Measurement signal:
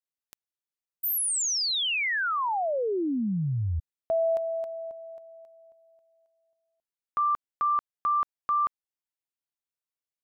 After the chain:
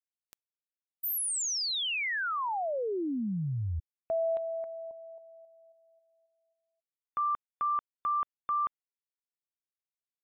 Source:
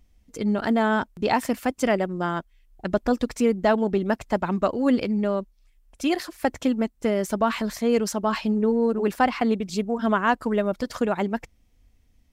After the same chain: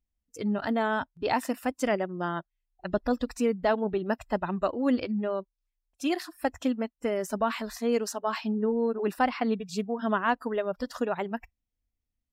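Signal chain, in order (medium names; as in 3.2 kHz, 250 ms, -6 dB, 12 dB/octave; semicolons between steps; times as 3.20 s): spectral noise reduction 20 dB; trim -4.5 dB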